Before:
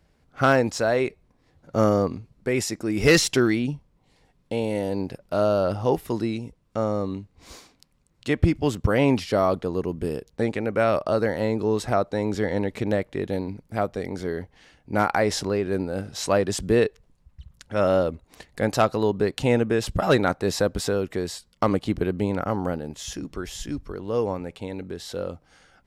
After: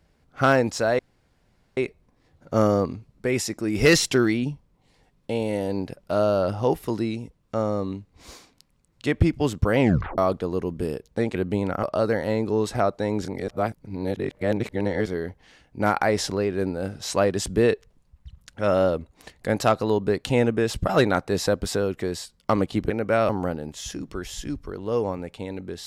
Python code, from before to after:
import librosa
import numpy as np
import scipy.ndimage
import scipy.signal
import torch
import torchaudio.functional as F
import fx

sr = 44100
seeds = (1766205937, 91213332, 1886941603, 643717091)

y = fx.edit(x, sr, fx.insert_room_tone(at_s=0.99, length_s=0.78),
    fx.tape_stop(start_s=9.02, length_s=0.38),
    fx.swap(start_s=10.57, length_s=0.39, other_s=22.03, other_length_s=0.48),
    fx.reverse_span(start_s=12.38, length_s=1.81), tone=tone)